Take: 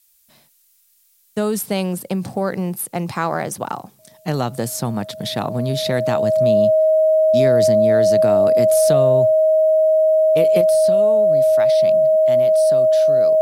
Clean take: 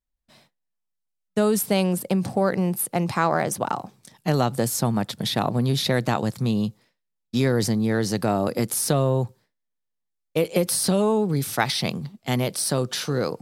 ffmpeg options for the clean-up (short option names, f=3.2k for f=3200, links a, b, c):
-af "bandreject=f=630:w=30,agate=range=-21dB:threshold=-46dB,asetnsamples=n=441:p=0,asendcmd='10.61 volume volume 8dB',volume=0dB"